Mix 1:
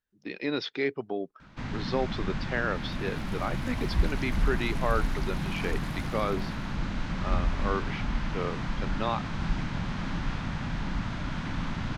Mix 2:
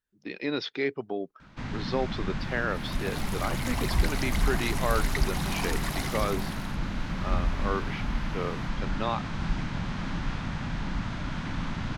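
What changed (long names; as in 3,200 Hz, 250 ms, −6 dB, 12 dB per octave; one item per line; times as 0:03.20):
second sound +11.5 dB
master: add high-shelf EQ 11,000 Hz +4.5 dB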